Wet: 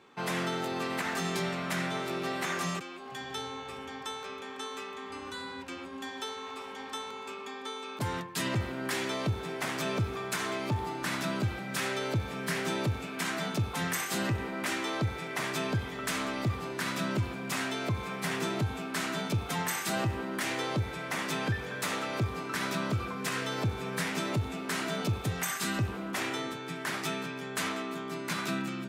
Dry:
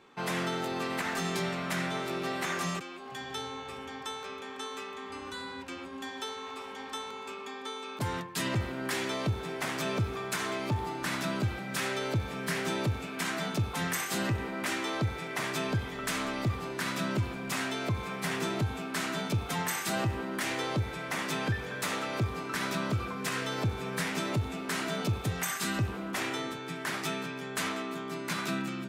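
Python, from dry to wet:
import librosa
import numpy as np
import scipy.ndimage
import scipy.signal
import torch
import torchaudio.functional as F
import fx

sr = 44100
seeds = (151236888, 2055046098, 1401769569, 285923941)

y = scipy.signal.sosfilt(scipy.signal.butter(2, 55.0, 'highpass', fs=sr, output='sos'), x)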